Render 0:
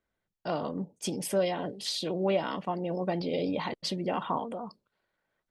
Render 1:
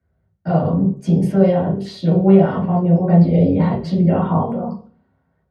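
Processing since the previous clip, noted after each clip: reverberation RT60 0.40 s, pre-delay 3 ms, DRR -8 dB; trim -11 dB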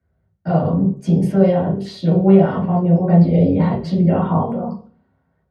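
no audible change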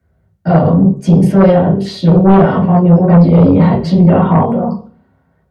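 sine folder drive 6 dB, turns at -1 dBFS; trim -1 dB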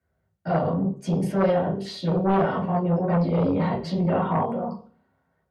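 bass shelf 320 Hz -9.5 dB; trim -9 dB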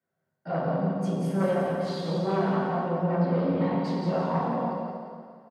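high-pass 140 Hz 24 dB/octave; feedback delay 175 ms, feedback 38%, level -6 dB; plate-style reverb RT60 2 s, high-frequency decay 0.95×, DRR -0.5 dB; trim -7 dB

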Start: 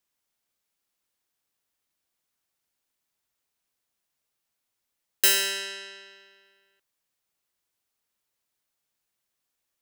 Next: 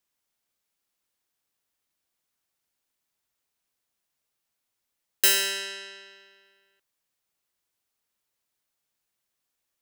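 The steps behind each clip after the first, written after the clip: no audible change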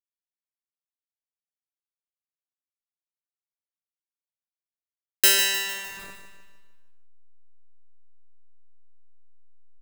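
send-on-delta sampling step -40 dBFS; feedback delay 152 ms, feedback 49%, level -9 dB; trim +2.5 dB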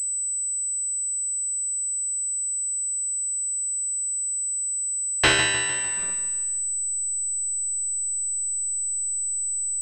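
class-D stage that switches slowly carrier 8 kHz; trim +3 dB

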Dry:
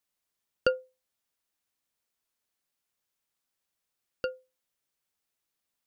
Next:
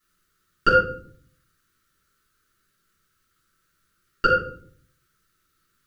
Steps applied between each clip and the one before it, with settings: FFT filter 150 Hz 0 dB, 240 Hz -6 dB, 410 Hz -2 dB, 880 Hz -25 dB, 1.3 kHz +8 dB, 2.3 kHz -6 dB; peak limiter -19.5 dBFS, peak gain reduction 7.5 dB; simulated room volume 660 m³, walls furnished, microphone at 9.7 m; trim +8 dB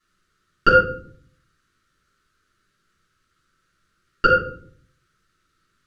distance through air 61 m; trim +3.5 dB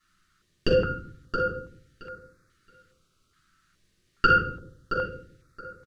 peak limiter -9 dBFS, peak gain reduction 7.5 dB; feedback delay 672 ms, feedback 17%, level -8.5 dB; step-sequenced notch 2.4 Hz 470–3000 Hz; trim +2 dB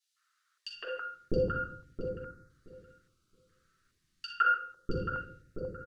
three bands offset in time highs, mids, lows 160/650 ms, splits 690/2900 Hz; trim -5.5 dB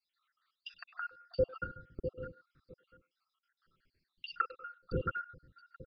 random holes in the spectrogram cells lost 64%; speakerphone echo 100 ms, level -20 dB; resampled via 11.025 kHz; trim +1 dB

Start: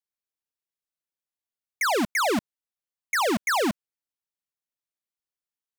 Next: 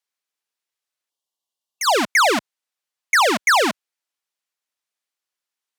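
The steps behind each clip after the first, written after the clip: frequency weighting A; time-frequency box 1.10–1.94 s, 1.2–2.7 kHz -14 dB; trim +8.5 dB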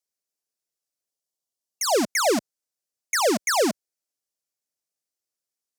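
high-order bell 1.8 kHz -10.5 dB 2.5 oct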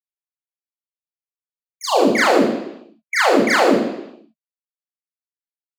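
expander on every frequency bin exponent 2; reverberation RT60 0.85 s, pre-delay 28 ms, DRR -6 dB; trim -5.5 dB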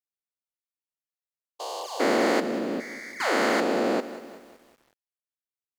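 spectrogram pixelated in time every 400 ms; bit-crushed delay 187 ms, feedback 55%, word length 7-bit, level -14.5 dB; trim -4.5 dB

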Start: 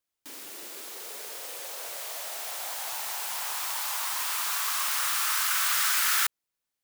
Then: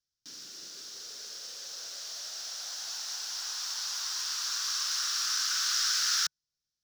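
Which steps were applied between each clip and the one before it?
FFT filter 150 Hz 0 dB, 270 Hz -11 dB, 920 Hz -20 dB, 1.5 kHz -8 dB, 2.2 kHz -17 dB, 5.6 kHz +5 dB, 8.6 kHz -18 dB, 15 kHz -23 dB; trim +3.5 dB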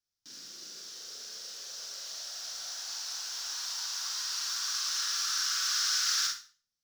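Schroeder reverb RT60 0.37 s, combs from 33 ms, DRR 0.5 dB; trim -3.5 dB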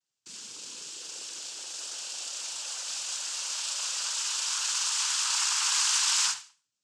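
noise-vocoded speech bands 8; trim +4 dB

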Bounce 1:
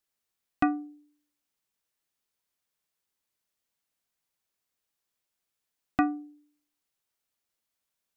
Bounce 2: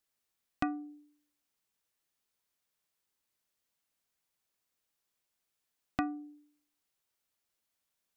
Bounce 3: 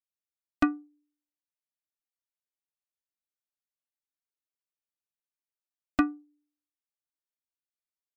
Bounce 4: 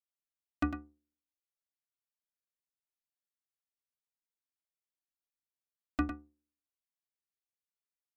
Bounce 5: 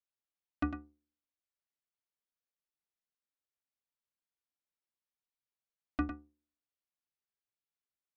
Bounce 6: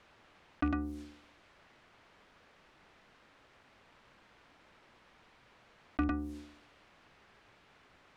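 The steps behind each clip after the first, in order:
compression 2:1, threshold -35 dBFS, peak gain reduction 9 dB
comb 3.3 ms, depth 90%; in parallel at -5.5 dB: saturation -22.5 dBFS, distortion -14 dB; on the sum: upward expansion 2.5:1, over -40 dBFS; trim +3.5 dB
octave divider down 2 oct, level -3 dB; delay 103 ms -9 dB; trim -8 dB
distance through air 120 m; trim -1.5 dB
rattle on loud lows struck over -36 dBFS, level -44 dBFS; level-controlled noise filter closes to 2.2 kHz, open at -40 dBFS; level flattener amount 70%

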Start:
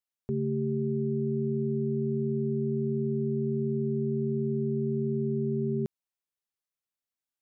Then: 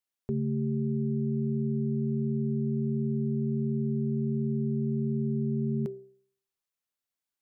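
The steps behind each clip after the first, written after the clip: de-hum 65.16 Hz, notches 11; trim +1.5 dB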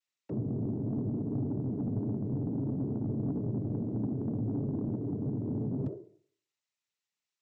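noise-vocoded speech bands 12; saturation -24 dBFS, distortion -17 dB; trim -1.5 dB

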